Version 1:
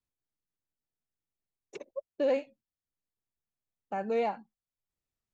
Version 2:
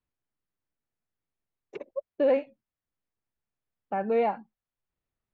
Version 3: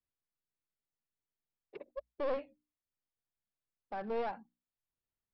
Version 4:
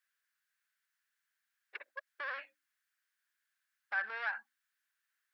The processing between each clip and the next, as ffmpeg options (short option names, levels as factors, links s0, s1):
-af "lowpass=2400,volume=1.68"
-af "aresample=11025,aeval=exprs='clip(val(0),-1,0.0335)':c=same,aresample=44100,bandreject=f=60:t=h:w=6,bandreject=f=120:t=h:w=6,bandreject=f=180:t=h:w=6,bandreject=f=240:t=h:w=6,bandreject=f=300:t=h:w=6,volume=0.376"
-af "alimiter=level_in=2.99:limit=0.0631:level=0:latency=1:release=112,volume=0.335,highpass=f=1600:t=q:w=5.8,volume=2.37"